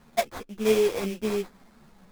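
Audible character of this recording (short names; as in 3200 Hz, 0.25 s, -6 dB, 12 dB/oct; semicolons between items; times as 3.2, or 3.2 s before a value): aliases and images of a low sample rate 2900 Hz, jitter 20%; a shimmering, thickened sound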